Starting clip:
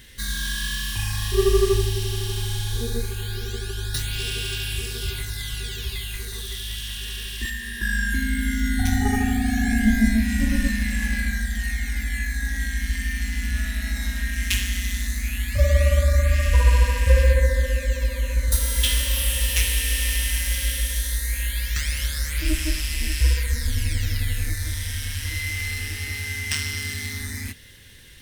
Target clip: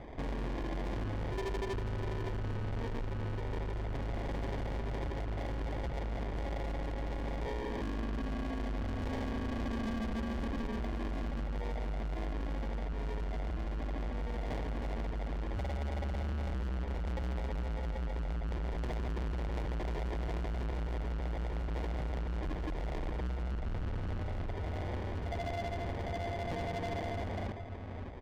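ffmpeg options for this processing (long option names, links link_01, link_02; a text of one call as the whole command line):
ffmpeg -i in.wav -filter_complex "[0:a]asettb=1/sr,asplit=3[link_01][link_02][link_03];[link_01]atrim=end=18.534[link_04];[link_02]atrim=start=18.53:end=20.62,asetpts=PTS-STARTPTS,afade=type=in:duration=0.004:curve=qsin,afade=type=out:start_time=2.086:duration=0.004:curve=qsin,aecho=1:1:1:0.57,atrim=end_sample=92169[link_05];[link_03]atrim=start=20.616[link_06];[link_04][link_05]acrossfade=duration=0.004:curve1=hsin:curve2=qsin[link_07];[link_07][link_06]acrossfade=duration=0.004:curve1=qsin:curve2=hsin,acompressor=threshold=-31dB:ratio=2.5,asplit=2[link_08][link_09];[link_09]adelay=571.4,volume=-8dB,highshelf=frequency=4000:gain=-12.9[link_10];[link_08][link_10]amix=inputs=2:normalize=0,acrusher=samples=32:mix=1:aa=0.000001,lowpass=2400,volume=33.5dB,asoftclip=hard,volume=-33.5dB" out.wav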